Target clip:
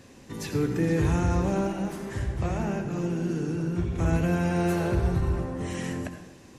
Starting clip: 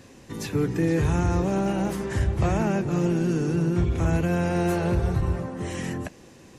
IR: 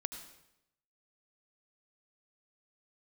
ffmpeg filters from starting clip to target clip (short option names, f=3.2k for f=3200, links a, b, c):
-filter_complex "[0:a]asettb=1/sr,asplit=3[a][b][c];[a]atrim=end=1.674[d];[b]atrim=start=1.67:end=3.99,asetpts=PTS-STARTPTS,afade=t=in:d=0.004:c=qsin,afade=t=out:st=2.316:d=0.004:c=qsin,flanger=delay=6:depth=7:regen=-61:speed=1.7:shape=sinusoidal[e];[c]atrim=start=3.986[f];[d][e]acrossfade=d=0.004:c1=hsin:c2=qsin[g];[g][f]acrossfade=d=0.004:c1=qsin:c2=hsin[h];[1:a]atrim=start_sample=2205,asetrate=48510,aresample=44100[i];[h][i]afir=irnorm=-1:irlink=0"